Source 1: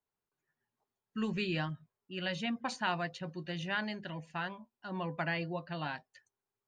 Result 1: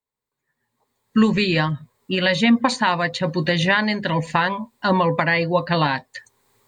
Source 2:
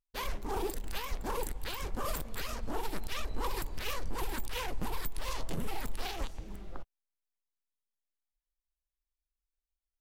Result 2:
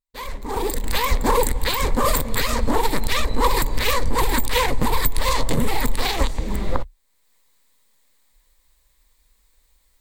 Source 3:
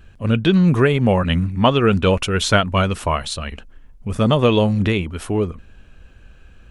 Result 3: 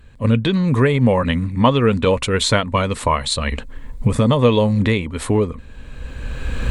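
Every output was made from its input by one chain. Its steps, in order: recorder AGC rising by 19 dB/s; ripple EQ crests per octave 1, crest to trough 7 dB; gain -1 dB

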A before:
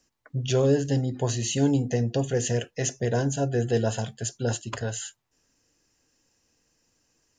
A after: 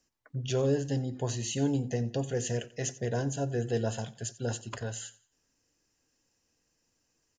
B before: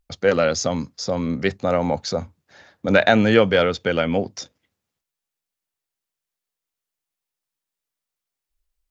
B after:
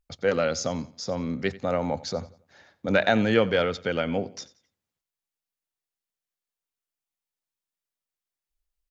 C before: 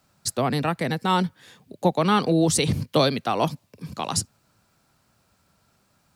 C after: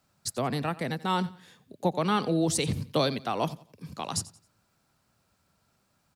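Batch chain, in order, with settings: feedback echo 89 ms, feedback 33%, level -19 dB; gain -6 dB

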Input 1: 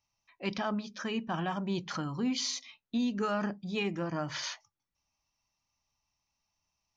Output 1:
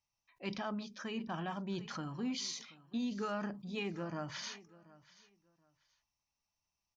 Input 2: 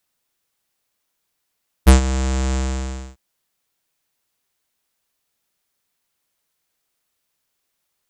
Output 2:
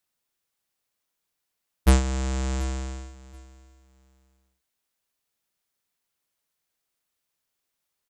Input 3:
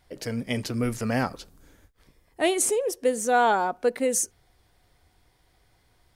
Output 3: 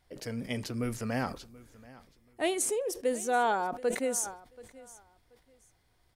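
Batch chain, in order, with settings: feedback echo 0.731 s, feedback 23%, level -20.5 dB; sustainer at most 120 dB/s; gain -6.5 dB

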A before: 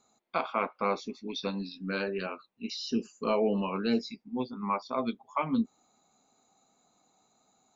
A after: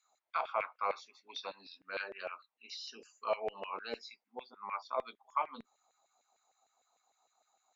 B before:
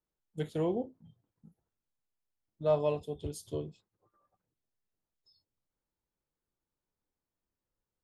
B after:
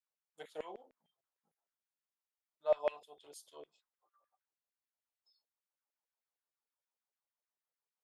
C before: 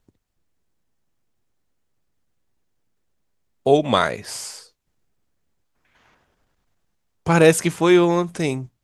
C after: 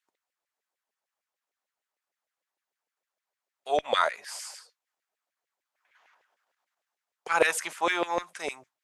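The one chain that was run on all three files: LFO high-pass saw down 6.6 Hz 520–2200 Hz; added harmonics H 2 -35 dB, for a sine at -0.5 dBFS; gain -8 dB

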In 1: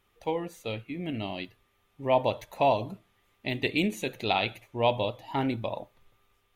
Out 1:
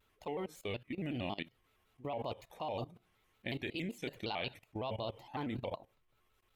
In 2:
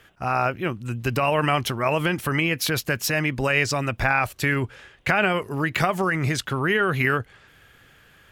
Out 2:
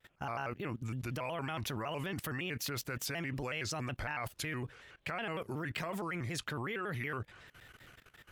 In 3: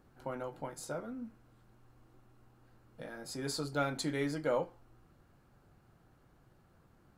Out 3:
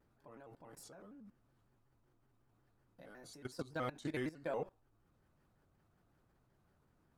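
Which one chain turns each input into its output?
level quantiser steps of 18 dB; shaped vibrato square 5.4 Hz, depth 160 cents; gain -2 dB

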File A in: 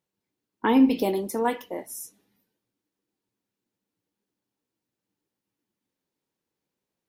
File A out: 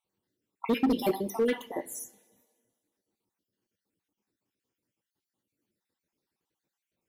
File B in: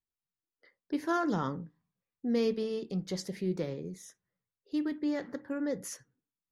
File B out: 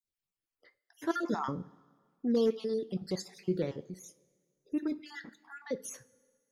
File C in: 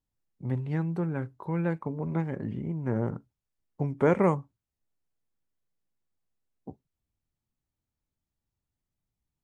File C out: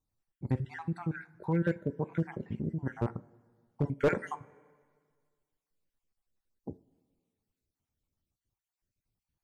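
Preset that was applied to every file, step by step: random spectral dropouts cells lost 49%; two-slope reverb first 0.27 s, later 1.8 s, from -18 dB, DRR 12 dB; overloaded stage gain 21.5 dB; gain +1.5 dB

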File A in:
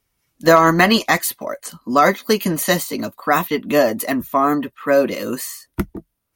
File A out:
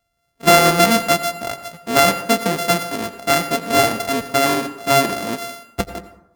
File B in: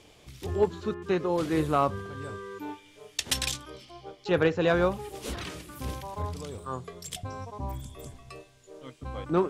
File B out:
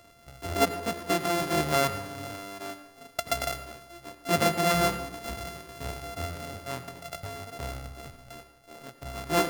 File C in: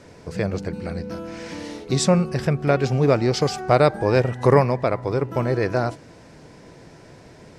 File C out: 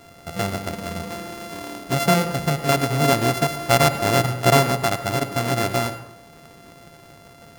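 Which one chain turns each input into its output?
sample sorter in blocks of 64 samples; low shelf 110 Hz -4 dB; plate-style reverb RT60 0.77 s, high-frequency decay 0.45×, pre-delay 75 ms, DRR 11.5 dB

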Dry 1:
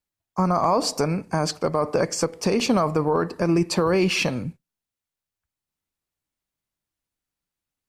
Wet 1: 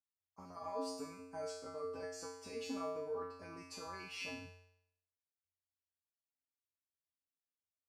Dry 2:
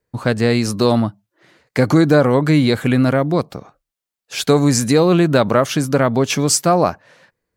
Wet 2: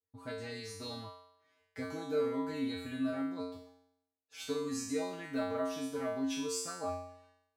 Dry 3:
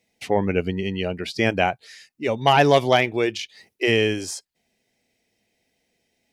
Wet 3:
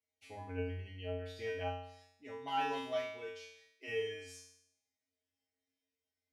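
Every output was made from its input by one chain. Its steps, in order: resonator 90 Hz, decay 0.74 s, harmonics odd, mix 100%; gain -5 dB

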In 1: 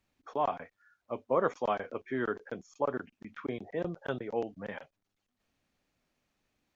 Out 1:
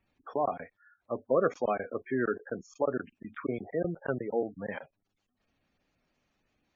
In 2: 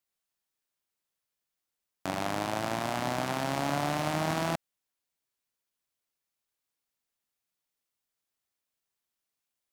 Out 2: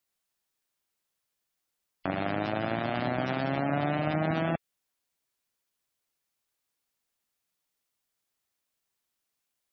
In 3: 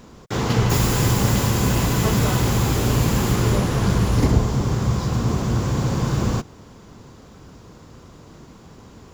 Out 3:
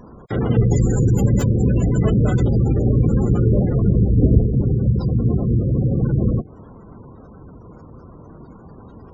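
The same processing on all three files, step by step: dynamic EQ 970 Hz, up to -8 dB, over -45 dBFS, Q 2.5; spectral gate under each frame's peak -20 dB strong; gain +3.5 dB

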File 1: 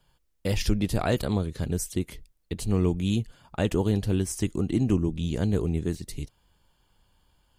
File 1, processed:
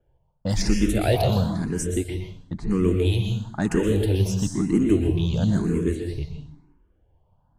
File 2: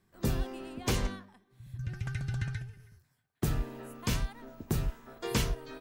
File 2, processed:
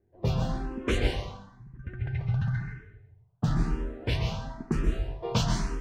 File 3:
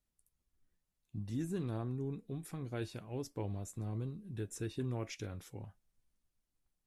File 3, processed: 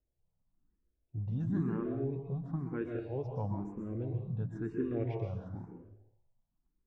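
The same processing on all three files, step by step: low-pass opened by the level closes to 730 Hz, open at -21 dBFS; high shelf 11000 Hz +2.5 dB; in parallel at -6 dB: hard clip -21 dBFS; on the sum: plate-style reverb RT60 0.72 s, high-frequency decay 0.9×, pre-delay 0.11 s, DRR 2.5 dB; endless phaser +1 Hz; gain +2.5 dB

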